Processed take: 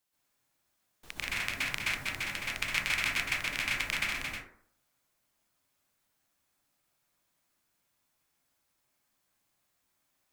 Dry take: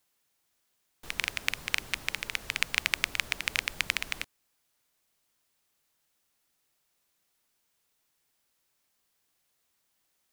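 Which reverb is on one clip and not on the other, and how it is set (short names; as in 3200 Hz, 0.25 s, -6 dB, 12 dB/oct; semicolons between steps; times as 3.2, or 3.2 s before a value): plate-style reverb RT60 0.6 s, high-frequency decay 0.4×, pre-delay 0.115 s, DRR -8 dB; gain -8 dB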